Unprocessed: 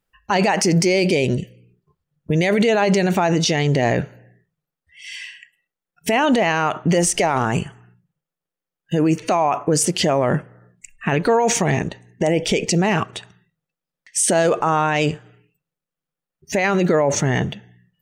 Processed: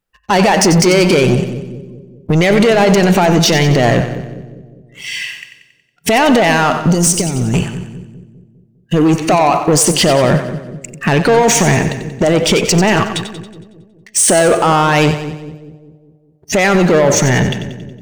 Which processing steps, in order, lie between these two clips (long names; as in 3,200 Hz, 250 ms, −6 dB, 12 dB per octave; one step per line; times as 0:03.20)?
0:06.86–0:07.54: drawn EQ curve 170 Hz 0 dB, 350 Hz −5 dB, 1,100 Hz −28 dB, 5,200 Hz 0 dB
leveller curve on the samples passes 2
echo with a time of its own for lows and highs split 460 Hz, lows 202 ms, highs 92 ms, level −10 dB
level +3 dB